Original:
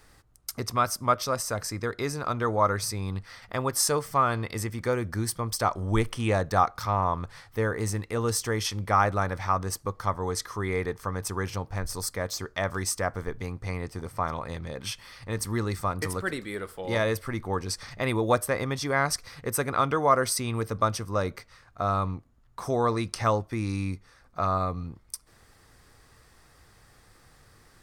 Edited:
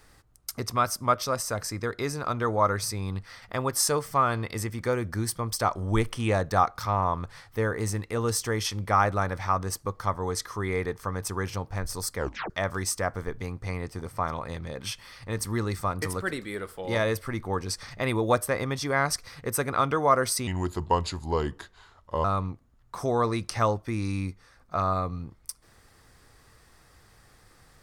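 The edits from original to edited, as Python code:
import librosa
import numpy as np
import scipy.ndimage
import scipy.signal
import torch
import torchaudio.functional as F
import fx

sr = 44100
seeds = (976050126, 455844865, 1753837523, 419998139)

y = fx.edit(x, sr, fx.tape_stop(start_s=12.17, length_s=0.33),
    fx.speed_span(start_s=20.47, length_s=1.42, speed=0.8), tone=tone)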